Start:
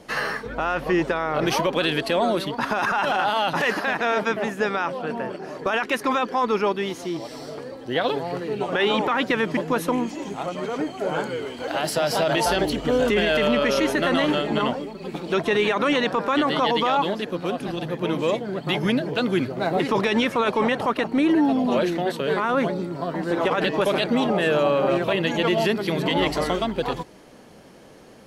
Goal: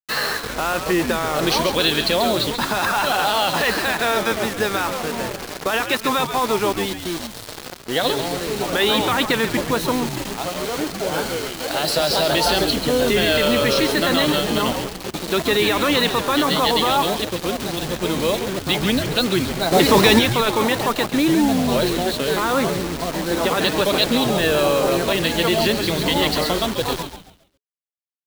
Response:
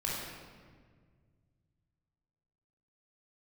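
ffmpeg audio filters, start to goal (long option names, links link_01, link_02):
-filter_complex "[0:a]asettb=1/sr,asplit=3[link_01][link_02][link_03];[link_01]atrim=end=6.214[link_04];[link_02]atrim=start=6.21:end=7.64,asetpts=PTS-STARTPTS,afade=type=in:duration=0.004:curve=qsin,afade=type=out:start_time=1.426:duration=0.004:curve=qsin,aeval=exprs='sgn(val(0))*max(abs(val(0))-0.00562,0)':channel_layout=same[link_05];[link_03]atrim=start=7.636[link_06];[link_04][link_05]acrossfade=duration=0.004:curve1=hsin:curve2=qsin[link_07];[link_07][link_06]acrossfade=duration=0.004:curve1=qsin:curve2=hsin,equalizer=frequency=4100:width_type=o:width=0.41:gain=13,acrusher=bits=4:mix=0:aa=0.000001,asettb=1/sr,asplit=3[link_08][link_09][link_10];[link_08]atrim=end=19.724[link_11];[link_09]atrim=start=19.72:end=20.19,asetpts=PTS-STARTPTS,afade=type=in:duration=0.004:curve=qsin,afade=type=out:start_time=0.466:duration=0.004:curve=qsin,acontrast=66[link_12];[link_10]atrim=start=20.186[link_13];[link_11][link_12]acrossfade=duration=0.004:curve1=hsin:curve2=qsin[link_14];[link_14][link_13]acrossfade=duration=0.004:curve1=qsin:curve2=hsin,asplit=2[link_15][link_16];[link_16]asplit=4[link_17][link_18][link_19][link_20];[link_17]adelay=137,afreqshift=-110,volume=-9dB[link_21];[link_18]adelay=274,afreqshift=-220,volume=-18.9dB[link_22];[link_19]adelay=411,afreqshift=-330,volume=-28.8dB[link_23];[link_20]adelay=548,afreqshift=-440,volume=-38.7dB[link_24];[link_21][link_22][link_23][link_24]amix=inputs=4:normalize=0[link_25];[link_15][link_25]amix=inputs=2:normalize=0,volume=1.5dB"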